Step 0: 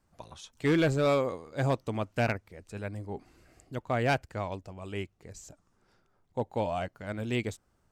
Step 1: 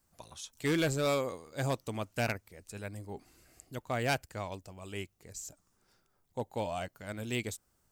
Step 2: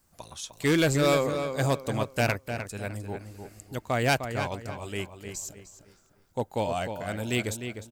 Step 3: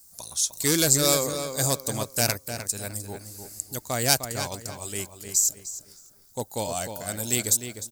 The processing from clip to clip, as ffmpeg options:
-af "aemphasis=mode=production:type=75kf,volume=-5dB"
-filter_complex "[0:a]asplit=2[a][b];[b]adelay=304,lowpass=f=3.2k:p=1,volume=-7.5dB,asplit=2[c][d];[d]adelay=304,lowpass=f=3.2k:p=1,volume=0.34,asplit=2[e][f];[f]adelay=304,lowpass=f=3.2k:p=1,volume=0.34,asplit=2[g][h];[h]adelay=304,lowpass=f=3.2k:p=1,volume=0.34[i];[a][c][e][g][i]amix=inputs=5:normalize=0,volume=6.5dB"
-af "aexciter=amount=5.2:drive=7.8:freq=4.1k,volume=-2dB"

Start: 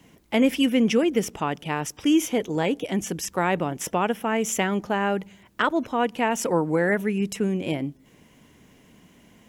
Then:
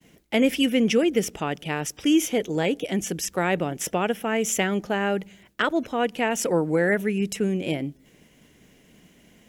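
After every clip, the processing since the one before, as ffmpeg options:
-af "equalizer=f=100:t=o:w=0.67:g=-6,equalizer=f=250:t=o:w=0.67:g=-3,equalizer=f=1k:t=o:w=0.67:g=-8,agate=range=-33dB:threshold=-54dB:ratio=3:detection=peak,volume=2dB"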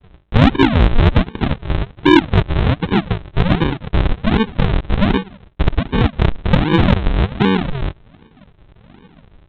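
-af "aresample=8000,acrusher=samples=23:mix=1:aa=0.000001:lfo=1:lforange=23:lforate=1.3,aresample=44100,acontrast=79,volume=3.5dB"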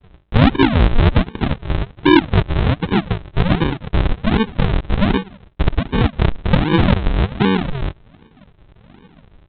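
-af "aresample=11025,aresample=44100,volume=-1dB"

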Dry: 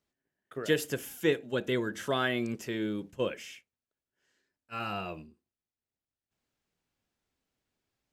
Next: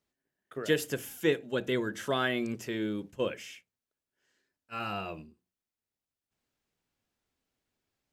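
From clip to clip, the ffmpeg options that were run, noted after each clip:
-af "bandreject=f=60:t=h:w=6,bandreject=f=120:t=h:w=6,bandreject=f=180:t=h:w=6"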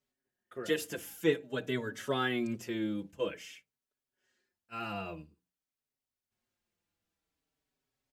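-filter_complex "[0:a]asplit=2[a][b];[b]adelay=4.9,afreqshift=-0.5[c];[a][c]amix=inputs=2:normalize=1"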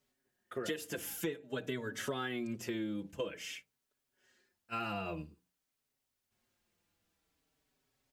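-af "acompressor=threshold=-41dB:ratio=10,volume=6.5dB"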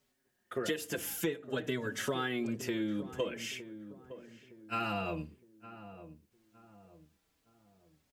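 -filter_complex "[0:a]asplit=2[a][b];[b]adelay=913,lowpass=f=990:p=1,volume=-12.5dB,asplit=2[c][d];[d]adelay=913,lowpass=f=990:p=1,volume=0.42,asplit=2[e][f];[f]adelay=913,lowpass=f=990:p=1,volume=0.42,asplit=2[g][h];[h]adelay=913,lowpass=f=990:p=1,volume=0.42[i];[a][c][e][g][i]amix=inputs=5:normalize=0,volume=3.5dB"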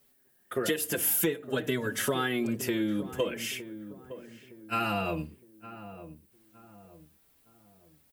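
-af "aexciter=amount=3.7:drive=2.8:freq=8.8k,volume=5dB"

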